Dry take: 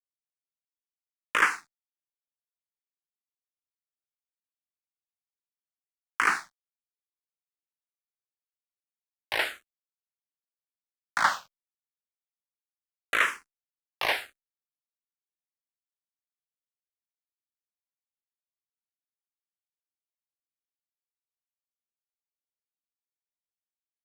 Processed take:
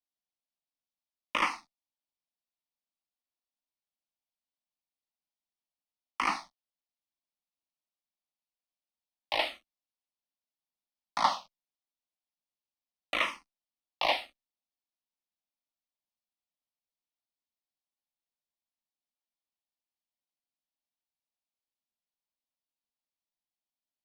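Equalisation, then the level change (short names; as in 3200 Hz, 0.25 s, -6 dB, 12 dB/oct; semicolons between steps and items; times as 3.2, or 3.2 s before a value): polynomial smoothing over 15 samples; fixed phaser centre 420 Hz, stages 6; +3.5 dB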